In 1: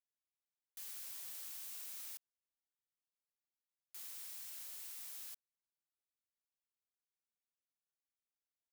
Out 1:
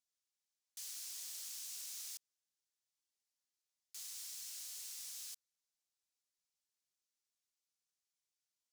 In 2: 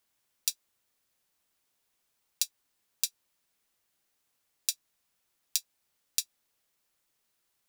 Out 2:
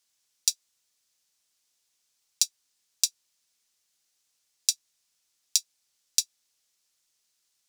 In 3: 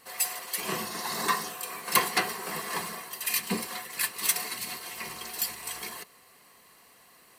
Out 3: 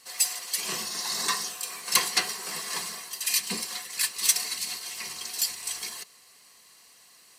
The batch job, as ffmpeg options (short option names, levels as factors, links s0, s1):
-af "equalizer=f=5900:t=o:w=2.1:g=15,volume=0.473"